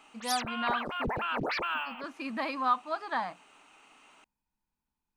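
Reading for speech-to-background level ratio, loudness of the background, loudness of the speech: -0.5 dB, -33.0 LUFS, -33.5 LUFS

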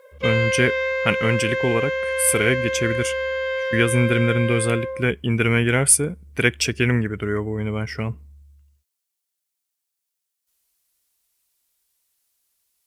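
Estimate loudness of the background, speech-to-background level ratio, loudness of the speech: -24.0 LUFS, 2.5 dB, -21.5 LUFS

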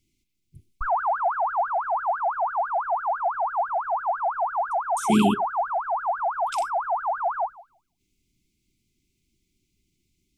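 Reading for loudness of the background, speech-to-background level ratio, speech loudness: -26.0 LUFS, 2.0 dB, -24.0 LUFS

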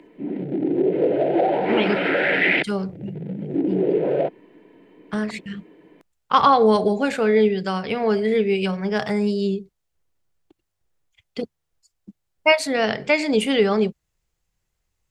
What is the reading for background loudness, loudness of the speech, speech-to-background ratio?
-21.5 LUFS, -21.0 LUFS, 0.5 dB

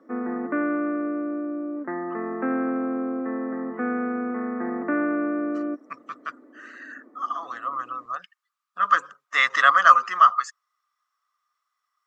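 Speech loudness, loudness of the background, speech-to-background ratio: -20.0 LUFS, -28.0 LUFS, 8.0 dB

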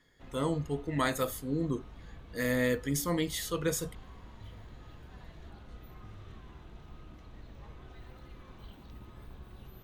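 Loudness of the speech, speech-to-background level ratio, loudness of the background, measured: -32.5 LUFS, 19.0 dB, -51.5 LUFS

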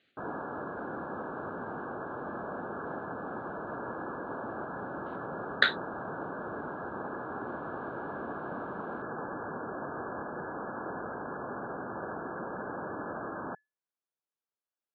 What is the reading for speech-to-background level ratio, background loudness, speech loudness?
10.5 dB, -38.5 LUFS, -28.0 LUFS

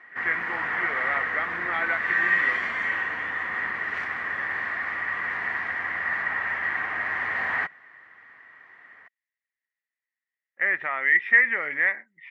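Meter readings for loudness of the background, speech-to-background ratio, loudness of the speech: -26.0 LUFS, 1.5 dB, -24.5 LUFS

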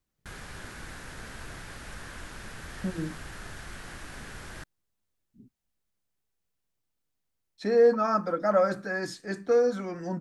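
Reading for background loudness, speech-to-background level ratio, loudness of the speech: -43.0 LUFS, 16.5 dB, -26.5 LUFS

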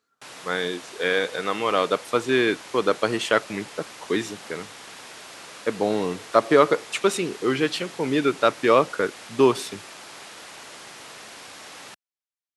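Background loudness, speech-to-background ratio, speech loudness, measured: -40.5 LUFS, 17.0 dB, -23.5 LUFS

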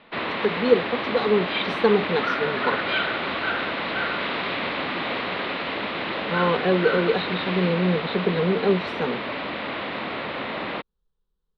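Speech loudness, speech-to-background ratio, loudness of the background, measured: -24.0 LUFS, 3.0 dB, -27.0 LUFS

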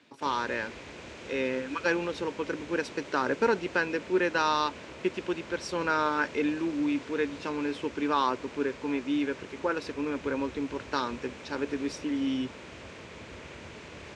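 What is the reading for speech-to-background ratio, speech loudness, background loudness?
14.0 dB, -30.5 LUFS, -44.5 LUFS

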